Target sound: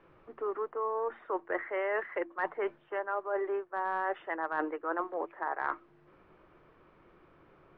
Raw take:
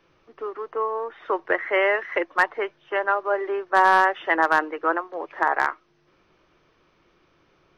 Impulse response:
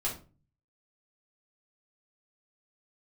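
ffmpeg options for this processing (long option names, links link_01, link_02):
-af "lowpass=1700,bandreject=frequency=56.7:width_type=h:width=4,bandreject=frequency=113.4:width_type=h:width=4,bandreject=frequency=170.1:width_type=h:width=4,bandreject=frequency=226.8:width_type=h:width=4,bandreject=frequency=283.5:width_type=h:width=4,bandreject=frequency=340.2:width_type=h:width=4,areverse,acompressor=threshold=-32dB:ratio=12,areverse,volume=2.5dB"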